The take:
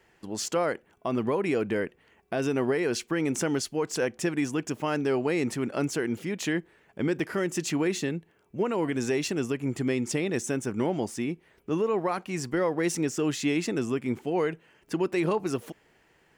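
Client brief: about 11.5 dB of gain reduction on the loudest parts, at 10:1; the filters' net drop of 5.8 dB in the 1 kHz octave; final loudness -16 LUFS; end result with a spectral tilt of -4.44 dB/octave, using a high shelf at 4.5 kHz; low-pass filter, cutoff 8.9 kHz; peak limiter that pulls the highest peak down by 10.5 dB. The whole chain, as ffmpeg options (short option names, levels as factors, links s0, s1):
-af "lowpass=8900,equalizer=f=1000:t=o:g=-8,highshelf=f=4500:g=4,acompressor=threshold=0.0178:ratio=10,volume=23.7,alimiter=limit=0.447:level=0:latency=1"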